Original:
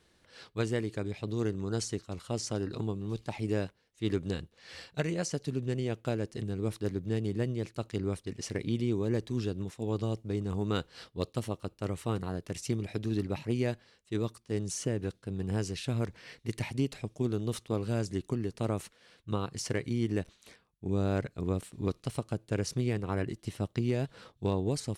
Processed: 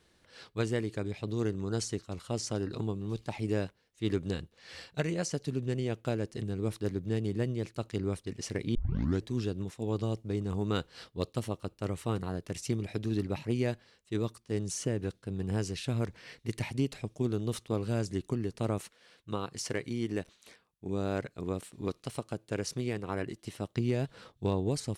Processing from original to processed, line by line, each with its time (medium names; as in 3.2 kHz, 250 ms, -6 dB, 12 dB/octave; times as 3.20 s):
8.75 s: tape start 0.49 s
18.78–23.76 s: bass shelf 160 Hz -9 dB